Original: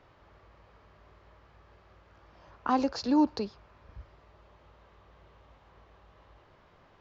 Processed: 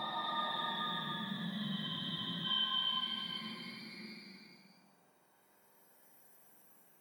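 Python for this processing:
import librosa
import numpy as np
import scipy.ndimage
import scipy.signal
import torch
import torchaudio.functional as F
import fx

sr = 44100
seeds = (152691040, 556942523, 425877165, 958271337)

y = fx.octave_mirror(x, sr, pivot_hz=970.0)
y = fx.paulstretch(y, sr, seeds[0], factor=4.8, window_s=0.5, from_s=2.65)
y = fx.spec_freeze(y, sr, seeds[1], at_s=1.9, hold_s=0.55)
y = y * 10.0 ** (-7.5 / 20.0)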